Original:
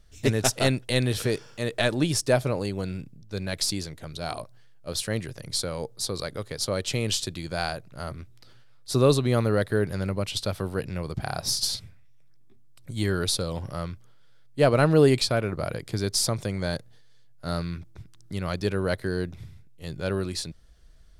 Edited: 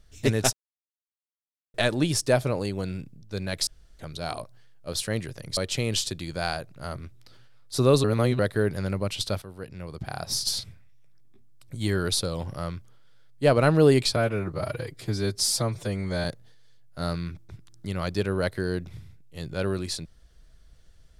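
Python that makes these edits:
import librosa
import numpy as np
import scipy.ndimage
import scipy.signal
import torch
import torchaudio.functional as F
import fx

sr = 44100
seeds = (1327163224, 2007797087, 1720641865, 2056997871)

y = fx.edit(x, sr, fx.silence(start_s=0.53, length_s=1.21),
    fx.room_tone_fill(start_s=3.67, length_s=0.32),
    fx.cut(start_s=5.57, length_s=1.16),
    fx.reverse_span(start_s=9.2, length_s=0.35),
    fx.fade_in_from(start_s=10.58, length_s=1.2, floor_db=-14.0),
    fx.stretch_span(start_s=15.32, length_s=1.39, factor=1.5), tone=tone)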